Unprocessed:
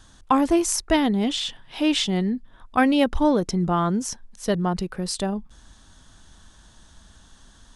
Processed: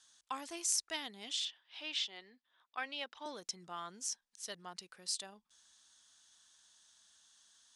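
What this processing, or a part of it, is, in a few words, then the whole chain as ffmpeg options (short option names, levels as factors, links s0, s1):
piezo pickup straight into a mixer: -filter_complex "[0:a]asettb=1/sr,asplit=3[s0][s1][s2];[s0]atrim=end=1.454[s3];[s1]atrim=start=1.45:end=3.26,asetpts=PTS-STARTPTS,afade=t=in:d=0.004:c=qsin,afade=t=out:st=1.806:d=0.004:c=qsin,acrossover=split=290 5000:gain=0.141 1 0.112[s4][s5][s6];[s4][s5][s6]amix=inputs=3:normalize=0[s7];[s2]atrim=start=3.256[s8];[s3][s7]acrossfade=d=0.004:c1=hsin:c2=qsin[s9];[s9][s8]acrossfade=d=0.004:c1=qsin:c2=hsin,lowpass=7000,aderivative,volume=0.668"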